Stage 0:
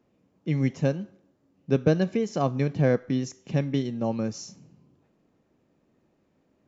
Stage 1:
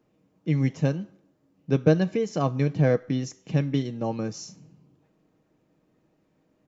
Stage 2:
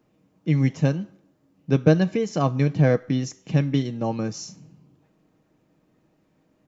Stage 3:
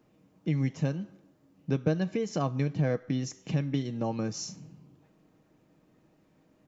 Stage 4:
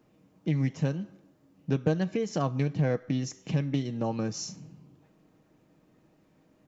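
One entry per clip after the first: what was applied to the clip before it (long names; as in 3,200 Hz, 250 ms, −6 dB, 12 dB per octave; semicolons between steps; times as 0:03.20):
comb filter 6.4 ms, depth 34%
parametric band 450 Hz −2.5 dB; level +3.5 dB
downward compressor 2 to 1, threshold −31 dBFS, peak gain reduction 11.5 dB
highs frequency-modulated by the lows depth 0.14 ms; level +1 dB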